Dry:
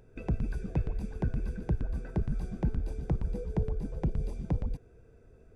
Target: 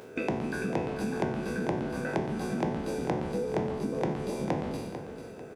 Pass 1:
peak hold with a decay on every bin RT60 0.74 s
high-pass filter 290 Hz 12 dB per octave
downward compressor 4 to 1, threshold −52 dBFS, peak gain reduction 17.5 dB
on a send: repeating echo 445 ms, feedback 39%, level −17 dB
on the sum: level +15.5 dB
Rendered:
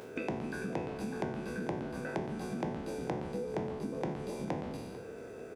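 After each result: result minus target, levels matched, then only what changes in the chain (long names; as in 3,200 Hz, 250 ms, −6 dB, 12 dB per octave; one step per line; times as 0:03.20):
downward compressor: peak gain reduction +5.5 dB; echo-to-direct −6.5 dB
change: downward compressor 4 to 1, threshold −44.5 dBFS, peak gain reduction 12 dB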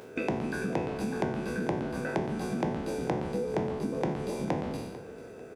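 echo-to-direct −6.5 dB
change: repeating echo 445 ms, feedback 39%, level −10.5 dB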